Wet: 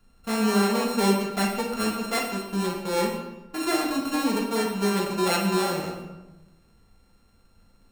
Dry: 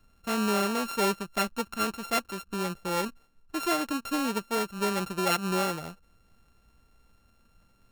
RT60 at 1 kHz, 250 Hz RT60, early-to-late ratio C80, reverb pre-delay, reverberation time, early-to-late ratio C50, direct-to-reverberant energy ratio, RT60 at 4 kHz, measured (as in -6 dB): 1.0 s, 1.3 s, 7.0 dB, 3 ms, 1.1 s, 4.0 dB, -2.0 dB, 0.75 s